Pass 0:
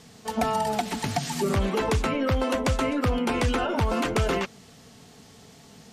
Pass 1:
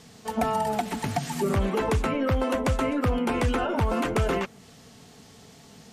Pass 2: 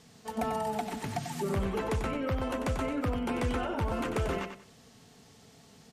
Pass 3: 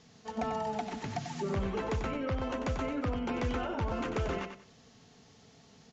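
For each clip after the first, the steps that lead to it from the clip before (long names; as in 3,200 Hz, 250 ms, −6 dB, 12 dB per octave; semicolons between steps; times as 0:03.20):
dynamic equaliser 4,700 Hz, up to −6 dB, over −48 dBFS, Q 0.82
repeating echo 93 ms, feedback 24%, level −8 dB; level −7 dB
Butterworth low-pass 7,200 Hz 96 dB per octave; level −2 dB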